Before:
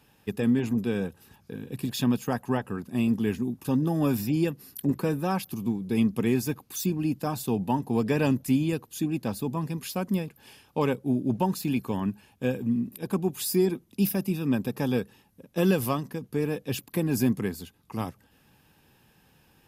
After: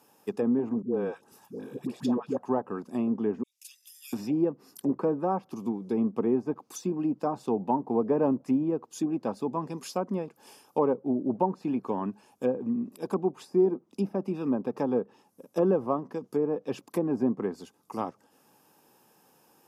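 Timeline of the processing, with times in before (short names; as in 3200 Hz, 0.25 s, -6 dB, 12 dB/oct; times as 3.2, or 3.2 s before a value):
0.82–2.37 dispersion highs, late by 0.109 s, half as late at 580 Hz
3.43–4.13 steep high-pass 2200 Hz 48 dB/oct
whole clip: HPF 320 Hz 12 dB/oct; band shelf 2600 Hz -10 dB; treble ducked by the level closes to 1000 Hz, closed at -26.5 dBFS; gain +3.5 dB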